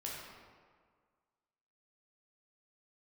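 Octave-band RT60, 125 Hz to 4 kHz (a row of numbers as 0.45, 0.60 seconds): 1.7, 1.7, 1.8, 1.8, 1.4, 1.0 seconds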